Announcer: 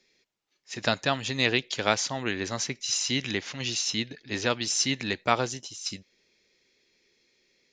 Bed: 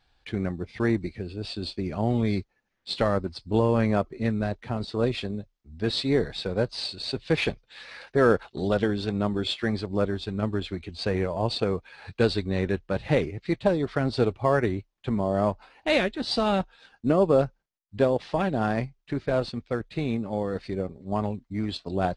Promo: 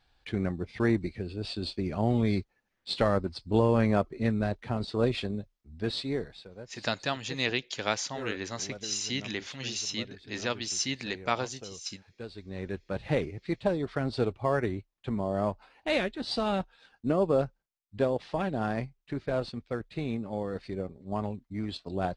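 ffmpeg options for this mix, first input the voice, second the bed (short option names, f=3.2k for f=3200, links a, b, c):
-filter_complex "[0:a]adelay=6000,volume=-5dB[a];[1:a]volume=13dB,afade=t=out:st=5.53:d=0.96:silence=0.125893,afade=t=in:st=12.32:d=0.73:silence=0.188365[b];[a][b]amix=inputs=2:normalize=0"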